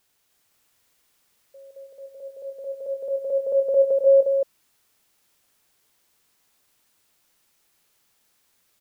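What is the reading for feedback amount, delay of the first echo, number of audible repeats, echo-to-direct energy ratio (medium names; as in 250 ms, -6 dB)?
no regular repeats, 161 ms, 4, -0.5 dB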